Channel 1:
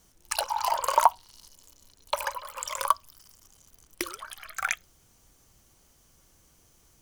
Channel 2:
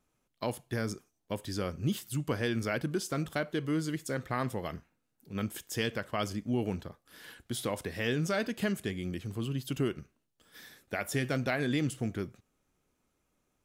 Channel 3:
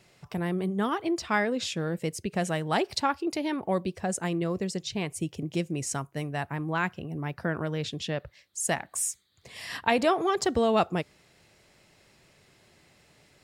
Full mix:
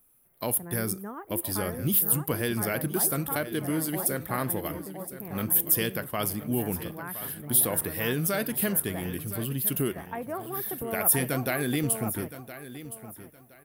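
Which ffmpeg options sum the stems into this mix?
-filter_complex "[1:a]volume=1.26,asplit=2[s0][s1];[s1]volume=0.2[s2];[2:a]lowpass=f=1800:w=0.5412,lowpass=f=1800:w=1.3066,adelay=250,volume=0.282,asplit=2[s3][s4];[s4]volume=0.708[s5];[s2][s5]amix=inputs=2:normalize=0,aecho=0:1:1017|2034|3051|4068:1|0.24|0.0576|0.0138[s6];[s0][s3][s6]amix=inputs=3:normalize=0,aexciter=amount=12:drive=7.4:freq=9700"

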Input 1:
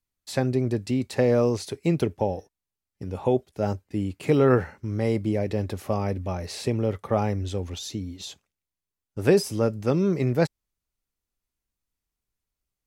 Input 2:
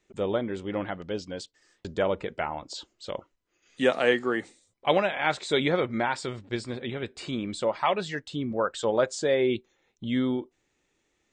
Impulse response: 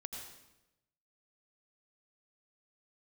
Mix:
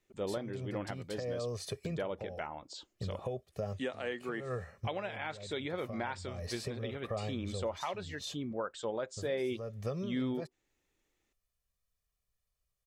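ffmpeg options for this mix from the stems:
-filter_complex "[0:a]aecho=1:1:1.7:0.81,acompressor=threshold=0.0316:ratio=5,volume=0.668[s0];[1:a]volume=0.398,asplit=2[s1][s2];[s2]apad=whole_len=567361[s3];[s0][s3]sidechaincompress=threshold=0.00708:ratio=5:attack=12:release=198[s4];[s4][s1]amix=inputs=2:normalize=0,alimiter=level_in=1.19:limit=0.0631:level=0:latency=1:release=452,volume=0.841"

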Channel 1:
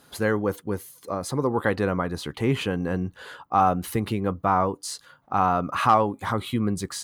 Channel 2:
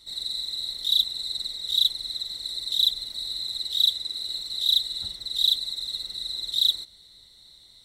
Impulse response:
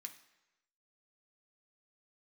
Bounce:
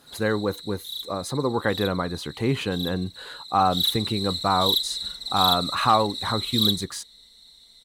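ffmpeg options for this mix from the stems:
-filter_complex "[0:a]volume=0.944[s0];[1:a]aecho=1:1:4.4:0.61,volume=5.62,asoftclip=hard,volume=0.178,volume=0.75,afade=t=in:st=3.54:d=0.37:silence=0.266073,asplit=2[s1][s2];[s2]volume=0.562[s3];[2:a]atrim=start_sample=2205[s4];[s3][s4]afir=irnorm=-1:irlink=0[s5];[s0][s1][s5]amix=inputs=3:normalize=0"

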